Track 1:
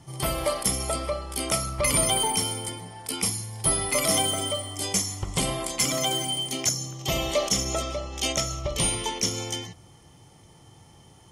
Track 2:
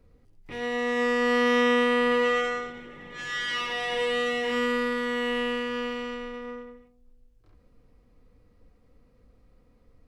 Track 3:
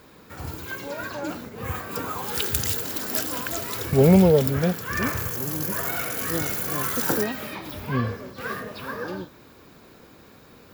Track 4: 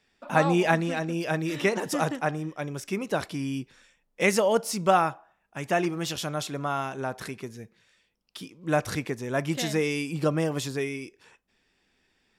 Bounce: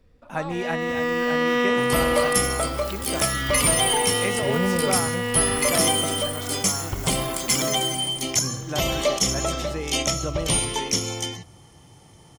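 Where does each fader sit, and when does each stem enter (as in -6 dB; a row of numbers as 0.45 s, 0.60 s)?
+2.5 dB, +0.5 dB, -10.5 dB, -6.5 dB; 1.70 s, 0.00 s, 0.50 s, 0.00 s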